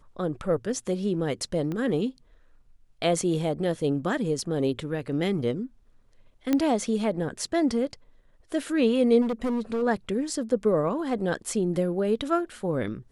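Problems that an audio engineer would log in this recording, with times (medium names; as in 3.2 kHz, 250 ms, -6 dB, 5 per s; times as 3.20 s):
1.72 s: pop -21 dBFS
6.53 s: pop -11 dBFS
9.21–9.83 s: clipped -23.5 dBFS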